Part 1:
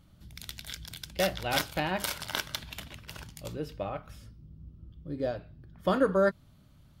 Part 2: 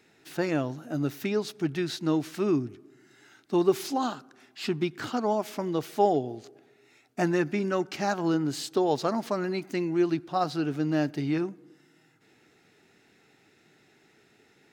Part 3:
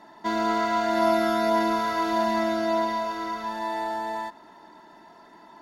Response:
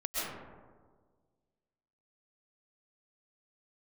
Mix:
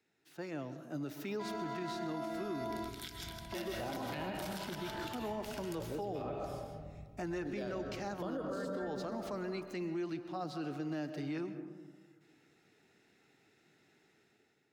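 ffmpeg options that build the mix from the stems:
-filter_complex "[0:a]acrossover=split=1100[s0][s1];[s0]aeval=exprs='val(0)*(1-0.7/2+0.7/2*cos(2*PI*2*n/s))':c=same[s2];[s1]aeval=exprs='val(0)*(1-0.7/2-0.7/2*cos(2*PI*2*n/s))':c=same[s3];[s2][s3]amix=inputs=2:normalize=0,adelay=2350,volume=0.708,asplit=2[s4][s5];[s5]volume=0.562[s6];[1:a]dynaudnorm=f=280:g=5:m=3.16,volume=0.119,asplit=3[s7][s8][s9];[s8]volume=0.158[s10];[2:a]adelay=1150,volume=0.211[s11];[s9]apad=whole_len=302877[s12];[s11][s12]sidechaingate=range=0.178:threshold=0.00112:ratio=16:detection=peak[s13];[3:a]atrim=start_sample=2205[s14];[s6][s10]amix=inputs=2:normalize=0[s15];[s15][s14]afir=irnorm=-1:irlink=0[s16];[s4][s7][s13][s16]amix=inputs=4:normalize=0,acrossover=split=220|470[s17][s18][s19];[s17]acompressor=threshold=0.00562:ratio=4[s20];[s18]acompressor=threshold=0.0126:ratio=4[s21];[s19]acompressor=threshold=0.0112:ratio=4[s22];[s20][s21][s22]amix=inputs=3:normalize=0,alimiter=level_in=2.24:limit=0.0631:level=0:latency=1:release=37,volume=0.447"

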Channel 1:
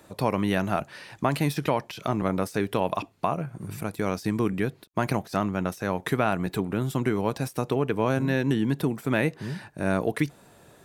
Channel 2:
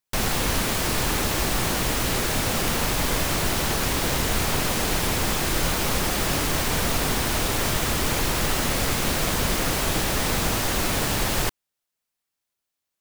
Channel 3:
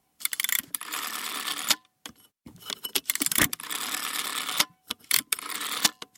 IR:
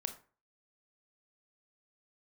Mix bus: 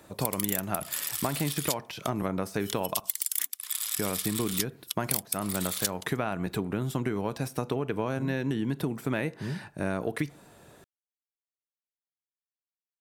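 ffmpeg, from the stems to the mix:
-filter_complex "[0:a]volume=0.75,asplit=3[s0][s1][s2];[s0]atrim=end=3,asetpts=PTS-STARTPTS,afade=t=out:st=2.996:d=0.004:c=hsin[s3];[s1]atrim=start=3:end=3.96,asetpts=PTS-STARTPTS,volume=0[s4];[s2]atrim=start=3.96,asetpts=PTS-STARTPTS,afade=t=in:d=0.004:c=hsin[s5];[s3][s4][s5]concat=n=3:v=0:a=1,asplit=2[s6][s7];[s7]volume=0.299[s8];[2:a]aderivative,volume=1.26[s9];[3:a]atrim=start_sample=2205[s10];[s8][s10]afir=irnorm=-1:irlink=0[s11];[s6][s9][s11]amix=inputs=3:normalize=0,acompressor=threshold=0.0562:ratio=6"

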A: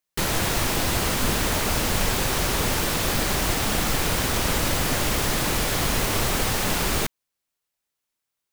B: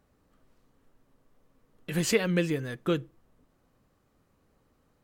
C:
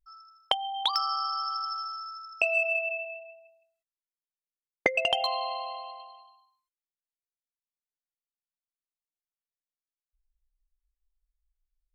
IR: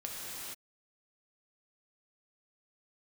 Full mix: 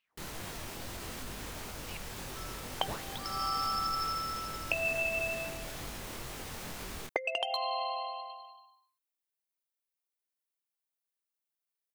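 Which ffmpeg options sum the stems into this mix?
-filter_complex "[0:a]alimiter=limit=0.188:level=0:latency=1:release=45,flanger=delay=20:depth=5.6:speed=2.2,volume=0.188[s0];[1:a]aeval=exprs='val(0)*sin(2*PI*1500*n/s+1500*0.85/2.6*sin(2*PI*2.6*n/s))':c=same,volume=0.266,asplit=3[s1][s2][s3];[s1]atrim=end=1.97,asetpts=PTS-STARTPTS,afade=t=out:st=1.966:d=0.004:c=hsin[s4];[s2]atrim=start=1.97:end=2.77,asetpts=PTS-STARTPTS,volume=0[s5];[s3]atrim=start=2.77,asetpts=PTS-STARTPTS,afade=t=in:d=0.004:c=hsin[s6];[s4][s5][s6]concat=n=3:v=0:a=1,asplit=2[s7][s8];[2:a]highpass=f=270:w=0.5412,highpass=f=270:w=1.3066,acompressor=threshold=0.0355:ratio=12,aexciter=amount=1.4:drive=7:freq=9700,adelay=2300,volume=1.06[s9];[s8]apad=whole_len=628228[s10];[s9][s10]sidechaincompress=threshold=0.00112:ratio=8:attack=16:release=317[s11];[s0][s7][s11]amix=inputs=3:normalize=0"

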